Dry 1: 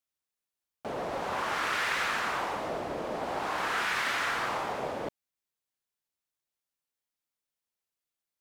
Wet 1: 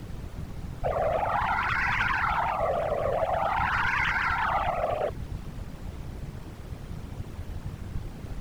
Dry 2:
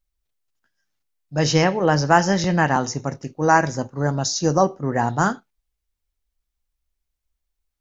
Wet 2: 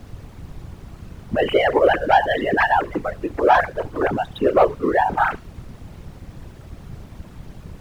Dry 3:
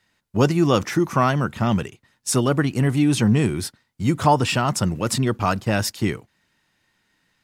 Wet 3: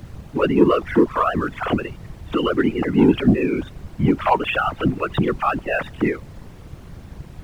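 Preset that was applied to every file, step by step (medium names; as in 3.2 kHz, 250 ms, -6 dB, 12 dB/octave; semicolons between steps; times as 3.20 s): formants replaced by sine waves; in parallel at +2.5 dB: compression, threshold -30 dBFS; on the sum: waveshaping leveller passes 1; added noise brown -31 dBFS; whisper effect; trim -4 dB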